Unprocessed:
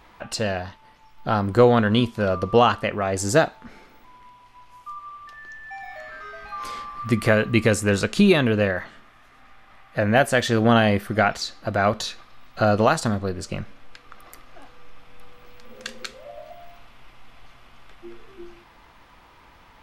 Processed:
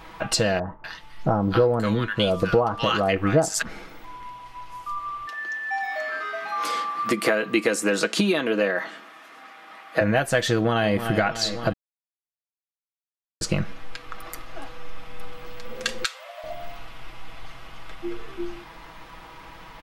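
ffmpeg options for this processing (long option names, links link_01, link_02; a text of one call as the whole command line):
ffmpeg -i in.wav -filter_complex "[0:a]asettb=1/sr,asplit=3[link_01][link_02][link_03];[link_01]atrim=end=0.594[link_04];[link_02]atrim=start=0.59:end=3.62,asetpts=PTS-STARTPTS,afade=type=in:duration=0.004:curve=qsin,afade=type=out:start_time=3.026:duration=0.004:curve=qsin,acrossover=split=1200[link_05][link_06];[link_06]adelay=250[link_07];[link_05][link_07]amix=inputs=2:normalize=0,atrim=end_sample=133623[link_08];[link_03]atrim=start=3.616[link_09];[link_04][link_08]acrossfade=duration=0.004:curve1=hsin:curve2=qsin[link_10];[link_10][link_09]acrossfade=duration=0.004:curve1=qsin:curve2=hsin,asettb=1/sr,asplit=3[link_11][link_12][link_13];[link_11]atrim=end=5.264[link_14];[link_12]atrim=start=5.26:end=10.01,asetpts=PTS-STARTPTS,afade=type=in:duration=0.004:curve=qsin,afade=type=out:start_time=4.746:duration=0.004:curve=qsin,highpass=frequency=230:width=0.5412,highpass=frequency=230:width=1.3066[link_15];[link_13]atrim=start=10.006[link_16];[link_14][link_15]acrossfade=duration=0.004:curve1=hsin:curve2=qsin[link_17];[link_17][link_16]acrossfade=duration=0.004:curve1=qsin:curve2=hsin,asplit=2[link_18][link_19];[link_19]afade=type=in:start_time=10.53:duration=0.01,afade=type=out:start_time=10.95:duration=0.01,aecho=0:1:300|600|900|1200|1500|1800:0.16788|0.100728|0.0604369|0.0362622|0.0217573|0.0130544[link_20];[link_18][link_20]amix=inputs=2:normalize=0,asettb=1/sr,asplit=3[link_21][link_22][link_23];[link_21]atrim=end=16.044[link_24];[link_22]atrim=start=16.04:end=16.44,asetpts=PTS-STARTPTS,afade=type=in:duration=0.004:curve=qsin,afade=type=out:start_time=0.396:duration=0.004:curve=qsin,highpass=frequency=780:width=0.5412,highpass=frequency=780:width=1.3066[link_25];[link_23]atrim=start=16.436[link_26];[link_24][link_25]acrossfade=duration=0.004:curve1=hsin:curve2=qsin[link_27];[link_27][link_26]acrossfade=duration=0.004:curve1=qsin:curve2=hsin,asplit=3[link_28][link_29][link_30];[link_28]atrim=end=11.73,asetpts=PTS-STARTPTS,afade=type=out:start_time=11.726:duration=0.004:curve=hsin[link_31];[link_29]atrim=start=11.73:end=13.41,asetpts=PTS-STARTPTS,volume=0[link_32];[link_30]atrim=start=13.41,asetpts=PTS-STARTPTS,afade=type=in:duration=0.004:curve=hsin[link_33];[link_31][link_32][link_33]concat=n=3:v=0:a=1,acompressor=threshold=-26dB:ratio=6,aecho=1:1:6.2:0.52,volume=7dB" out.wav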